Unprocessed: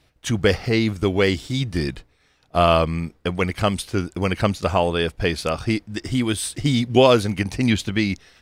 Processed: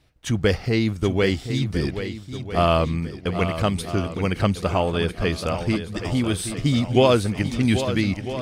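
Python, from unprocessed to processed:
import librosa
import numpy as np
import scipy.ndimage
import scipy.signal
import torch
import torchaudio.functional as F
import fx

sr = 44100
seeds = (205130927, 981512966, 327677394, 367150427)

y = fx.low_shelf(x, sr, hz=250.0, db=4.5)
y = fx.echo_swing(y, sr, ms=1299, ratio=1.5, feedback_pct=40, wet_db=-10.0)
y = y * 10.0 ** (-3.5 / 20.0)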